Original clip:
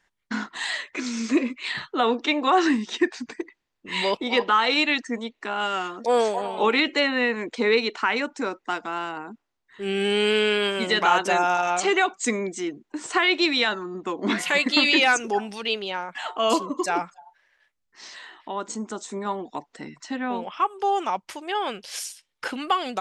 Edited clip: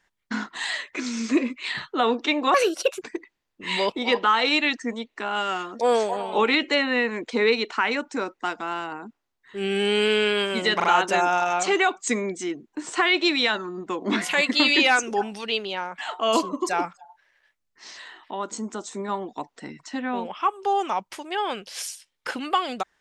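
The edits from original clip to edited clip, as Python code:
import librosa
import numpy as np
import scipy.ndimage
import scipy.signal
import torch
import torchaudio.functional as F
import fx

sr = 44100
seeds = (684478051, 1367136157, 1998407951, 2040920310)

y = fx.edit(x, sr, fx.speed_span(start_s=2.54, length_s=0.73, speed=1.52),
    fx.stutter(start_s=11.01, slice_s=0.04, count=3), tone=tone)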